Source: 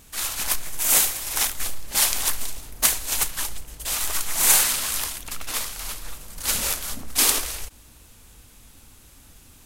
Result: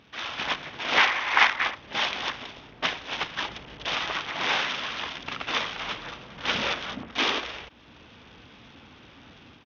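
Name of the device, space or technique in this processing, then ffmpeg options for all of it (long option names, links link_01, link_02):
Bluetooth headset: -filter_complex "[0:a]asplit=3[link_01][link_02][link_03];[link_01]afade=type=out:start_time=0.97:duration=0.02[link_04];[link_02]equalizer=frequency=125:width_type=o:width=1:gain=-5,equalizer=frequency=1000:width_type=o:width=1:gain=10,equalizer=frequency=2000:width_type=o:width=1:gain=11,afade=type=in:start_time=0.97:duration=0.02,afade=type=out:start_time=1.74:duration=0.02[link_05];[link_03]afade=type=in:start_time=1.74:duration=0.02[link_06];[link_04][link_05][link_06]amix=inputs=3:normalize=0,highpass=140,dynaudnorm=framelen=250:gausssize=3:maxgain=7dB,aresample=8000,aresample=44100" -ar 48000 -c:a sbc -b:a 64k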